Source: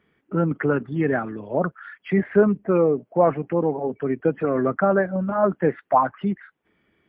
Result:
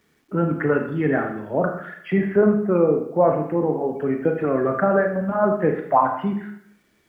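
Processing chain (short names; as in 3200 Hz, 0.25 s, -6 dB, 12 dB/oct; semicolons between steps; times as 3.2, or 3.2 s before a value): 2.22–3.76 high shelf 2600 Hz -11.5 dB; Schroeder reverb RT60 0.69 s, combs from 26 ms, DRR 3.5 dB; bit-crush 11-bit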